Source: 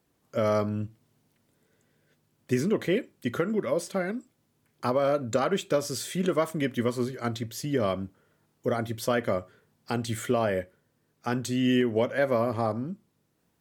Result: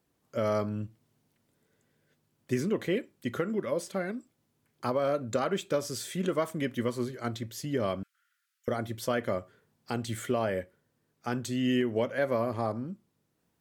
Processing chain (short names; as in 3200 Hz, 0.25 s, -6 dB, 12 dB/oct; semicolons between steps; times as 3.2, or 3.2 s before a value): 8.03–8.68 steep high-pass 1300 Hz 72 dB/oct; gain -3.5 dB